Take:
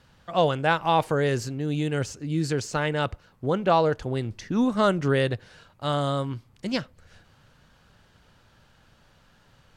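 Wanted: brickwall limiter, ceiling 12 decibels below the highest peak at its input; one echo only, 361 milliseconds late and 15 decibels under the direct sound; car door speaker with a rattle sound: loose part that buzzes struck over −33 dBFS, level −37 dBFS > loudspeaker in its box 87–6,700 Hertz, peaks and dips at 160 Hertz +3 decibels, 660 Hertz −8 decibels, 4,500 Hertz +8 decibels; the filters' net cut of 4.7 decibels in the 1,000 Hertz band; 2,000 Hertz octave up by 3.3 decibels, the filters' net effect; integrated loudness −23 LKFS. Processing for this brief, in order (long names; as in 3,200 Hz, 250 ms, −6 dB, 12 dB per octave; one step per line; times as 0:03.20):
parametric band 1,000 Hz −6 dB
parametric band 2,000 Hz +7 dB
brickwall limiter −19.5 dBFS
single-tap delay 361 ms −15 dB
loose part that buzzes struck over −33 dBFS, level −37 dBFS
loudspeaker in its box 87–6,700 Hz, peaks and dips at 160 Hz +3 dB, 660 Hz −8 dB, 4,500 Hz +8 dB
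level +7 dB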